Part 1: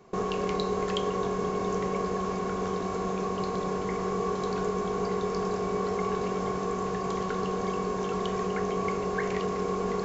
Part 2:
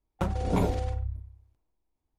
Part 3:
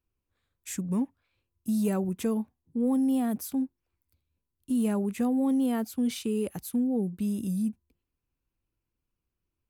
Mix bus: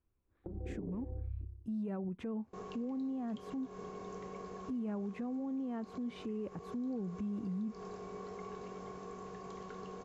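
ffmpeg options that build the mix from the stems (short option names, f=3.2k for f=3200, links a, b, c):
-filter_complex "[0:a]adelay=2400,volume=-16.5dB[a];[1:a]lowpass=f=350:t=q:w=3.8,acompressor=threshold=-31dB:ratio=6,adelay=250,volume=-2.5dB[b];[2:a]lowpass=1.7k,volume=2dB[c];[a][c]amix=inputs=2:normalize=0,alimiter=level_in=2dB:limit=-24dB:level=0:latency=1:release=163,volume=-2dB,volume=0dB[d];[b][d]amix=inputs=2:normalize=0,alimiter=level_in=9dB:limit=-24dB:level=0:latency=1:release=165,volume=-9dB"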